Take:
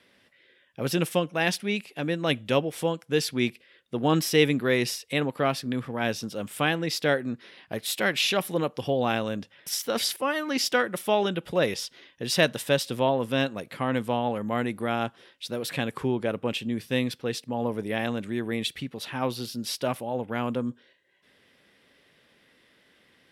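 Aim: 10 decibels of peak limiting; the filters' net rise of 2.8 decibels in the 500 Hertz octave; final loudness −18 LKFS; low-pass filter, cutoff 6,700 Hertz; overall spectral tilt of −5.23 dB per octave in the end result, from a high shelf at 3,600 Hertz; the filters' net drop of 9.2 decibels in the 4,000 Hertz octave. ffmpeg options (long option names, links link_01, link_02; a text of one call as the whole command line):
ffmpeg -i in.wav -af "lowpass=6700,equalizer=frequency=500:width_type=o:gain=3.5,highshelf=frequency=3600:gain=-6,equalizer=frequency=4000:width_type=o:gain=-8,volume=12dB,alimiter=limit=-6dB:level=0:latency=1" out.wav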